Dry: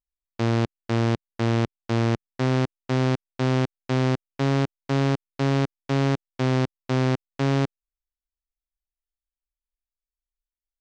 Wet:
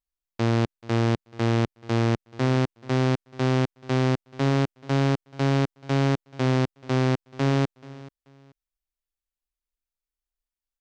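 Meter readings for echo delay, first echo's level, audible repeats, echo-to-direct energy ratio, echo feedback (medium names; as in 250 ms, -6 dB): 433 ms, -20.0 dB, 2, -19.5 dB, 26%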